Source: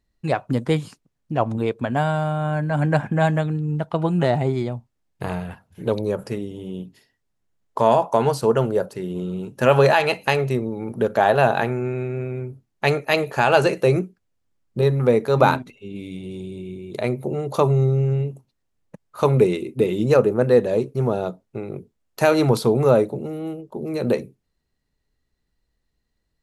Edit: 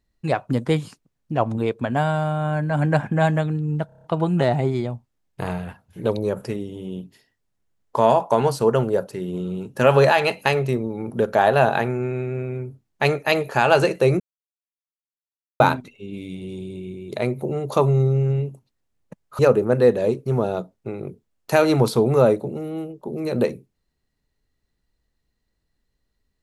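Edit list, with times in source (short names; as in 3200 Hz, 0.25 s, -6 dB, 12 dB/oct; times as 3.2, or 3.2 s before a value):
3.86 stutter 0.03 s, 7 plays
14.02–15.42 mute
19.21–20.08 cut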